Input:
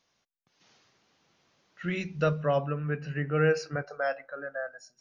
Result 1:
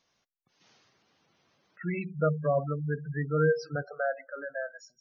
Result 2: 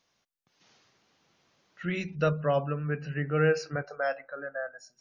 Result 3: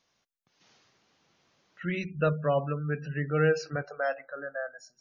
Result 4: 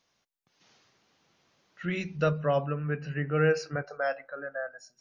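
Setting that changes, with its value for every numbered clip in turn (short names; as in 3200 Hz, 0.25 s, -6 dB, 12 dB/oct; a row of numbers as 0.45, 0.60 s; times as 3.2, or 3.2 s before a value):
spectral gate, under each frame's peak: -15, -45, -30, -55 dB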